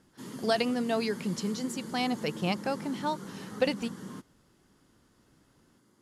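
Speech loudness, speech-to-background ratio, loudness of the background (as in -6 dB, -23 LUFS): -32.0 LUFS, 10.0 dB, -42.0 LUFS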